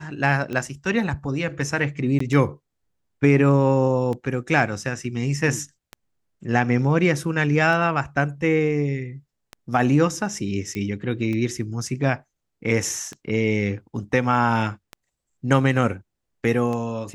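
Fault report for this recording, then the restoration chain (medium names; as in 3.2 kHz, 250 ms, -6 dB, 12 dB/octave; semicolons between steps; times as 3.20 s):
tick 33 1/3 rpm -18 dBFS
2.19–2.20 s: dropout 14 ms
10.75 s: pop -18 dBFS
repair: de-click; interpolate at 2.19 s, 14 ms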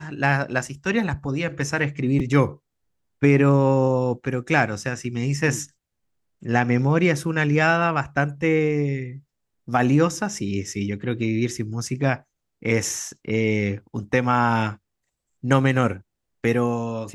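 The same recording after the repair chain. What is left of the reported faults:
nothing left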